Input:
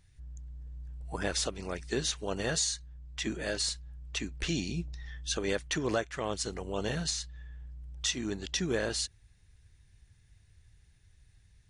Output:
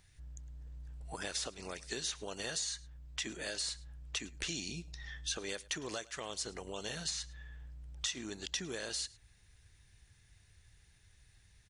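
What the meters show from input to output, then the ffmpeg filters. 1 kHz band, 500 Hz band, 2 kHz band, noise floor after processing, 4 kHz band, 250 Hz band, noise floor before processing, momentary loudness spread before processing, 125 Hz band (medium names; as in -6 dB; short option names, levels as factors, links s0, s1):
-8.0 dB, -10.0 dB, -5.5 dB, -66 dBFS, -4.0 dB, -11.0 dB, -63 dBFS, 15 LU, -10.5 dB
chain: -filter_complex "[0:a]lowshelf=f=350:g=-8,acrossover=split=3300|7000[s0][s1][s2];[s0]acompressor=threshold=0.00501:ratio=4[s3];[s1]acompressor=threshold=0.00447:ratio=4[s4];[s2]acompressor=threshold=0.00355:ratio=4[s5];[s3][s4][s5]amix=inputs=3:normalize=0,aecho=1:1:107:0.0794,volume=1.58"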